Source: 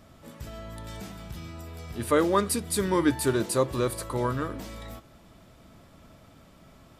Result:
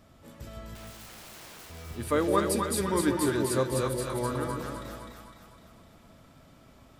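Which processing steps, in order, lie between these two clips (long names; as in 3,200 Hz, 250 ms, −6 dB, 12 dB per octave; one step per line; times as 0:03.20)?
0:00.75–0:01.70: wrap-around overflow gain 41 dB
echo with a time of its own for lows and highs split 650 Hz, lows 159 ms, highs 254 ms, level −3 dB
level −4 dB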